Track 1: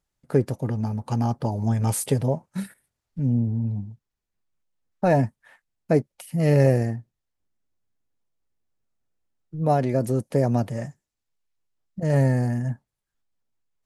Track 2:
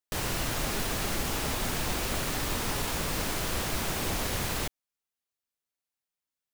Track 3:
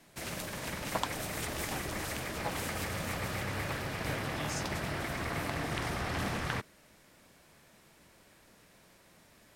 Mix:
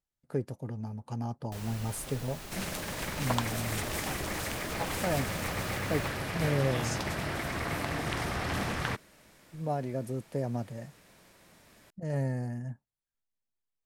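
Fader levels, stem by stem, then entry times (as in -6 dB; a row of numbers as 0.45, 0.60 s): -11.5, -13.5, +2.0 dB; 0.00, 1.40, 2.35 s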